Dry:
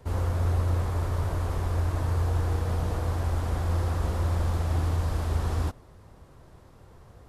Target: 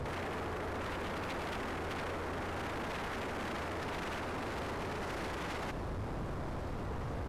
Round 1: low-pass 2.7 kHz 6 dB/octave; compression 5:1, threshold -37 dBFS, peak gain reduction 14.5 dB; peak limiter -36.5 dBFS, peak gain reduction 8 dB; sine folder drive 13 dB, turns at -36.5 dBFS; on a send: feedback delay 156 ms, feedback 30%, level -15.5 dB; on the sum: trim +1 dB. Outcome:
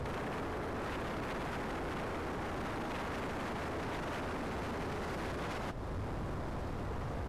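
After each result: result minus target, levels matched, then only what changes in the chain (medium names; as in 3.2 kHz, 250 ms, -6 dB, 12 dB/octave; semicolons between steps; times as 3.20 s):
compression: peak gain reduction +14.5 dB; echo 53 ms late
remove: compression 5:1, threshold -37 dBFS, peak gain reduction 14.5 dB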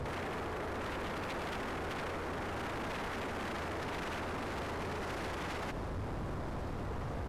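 echo 53 ms late
change: feedback delay 103 ms, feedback 30%, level -15.5 dB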